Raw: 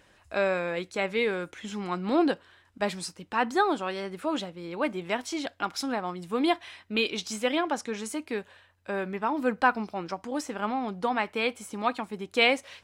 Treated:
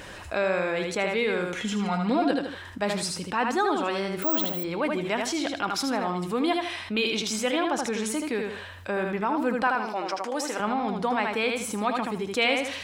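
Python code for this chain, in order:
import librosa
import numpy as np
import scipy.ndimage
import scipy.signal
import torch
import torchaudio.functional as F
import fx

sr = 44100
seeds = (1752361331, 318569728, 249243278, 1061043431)

y = fx.comb(x, sr, ms=4.2, depth=0.85, at=(1.55, 2.31))
y = fx.highpass(y, sr, hz=410.0, slope=12, at=(9.67, 10.6))
y = fx.echo_feedback(y, sr, ms=78, feedback_pct=23, wet_db=-6.0)
y = fx.resample_bad(y, sr, factor=2, down='none', up='zero_stuff', at=(4.22, 4.64))
y = fx.env_flatten(y, sr, amount_pct=50)
y = y * librosa.db_to_amplitude(-3.0)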